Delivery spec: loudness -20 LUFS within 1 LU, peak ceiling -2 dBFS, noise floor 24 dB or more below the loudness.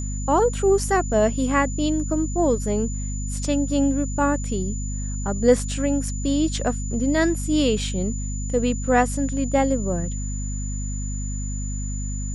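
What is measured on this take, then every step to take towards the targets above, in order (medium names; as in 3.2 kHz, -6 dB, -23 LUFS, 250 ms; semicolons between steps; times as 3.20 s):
hum 50 Hz; highest harmonic 250 Hz; hum level -25 dBFS; steady tone 7 kHz; tone level -35 dBFS; loudness -23.0 LUFS; peak level -5.5 dBFS; loudness target -20.0 LUFS
-> hum notches 50/100/150/200/250 Hz; band-stop 7 kHz, Q 30; trim +3 dB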